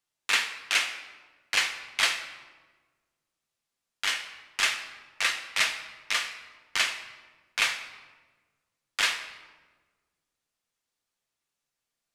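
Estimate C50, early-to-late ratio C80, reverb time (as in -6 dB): 9.5 dB, 12.0 dB, 1.4 s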